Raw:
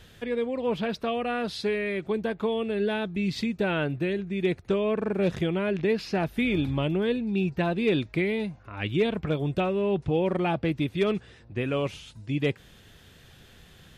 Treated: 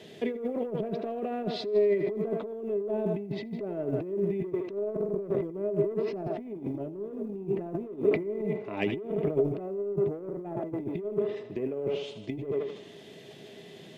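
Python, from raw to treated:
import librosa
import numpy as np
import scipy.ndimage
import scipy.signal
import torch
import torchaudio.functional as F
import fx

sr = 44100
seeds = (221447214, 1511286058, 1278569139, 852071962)

y = fx.reverse_delay(x, sr, ms=109, wet_db=-12, at=(6.46, 8.56))
y = fx.peak_eq(y, sr, hz=1400.0, db=-13.5, octaves=0.75)
y = fx.env_lowpass_down(y, sr, base_hz=890.0, full_db=-24.0)
y = scipy.signal.sosfilt(scipy.signal.butter(4, 160.0, 'highpass', fs=sr, output='sos'), y)
y = 10.0 ** (-21.0 / 20.0) * np.tanh(y / 10.0 ** (-21.0 / 20.0))
y = fx.lowpass(y, sr, hz=3200.0, slope=6)
y = fx.peak_eq(y, sr, hz=330.0, db=4.0, octaves=0.25)
y = fx.echo_thinned(y, sr, ms=80, feedback_pct=64, hz=390.0, wet_db=-11)
y = fx.over_compress(y, sr, threshold_db=-34.0, ratio=-0.5)
y = fx.quant_float(y, sr, bits=6)
y = fx.small_body(y, sr, hz=(410.0, 630.0, 2000.0), ring_ms=100, db=13)
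y = fx.sustainer(y, sr, db_per_s=110.0)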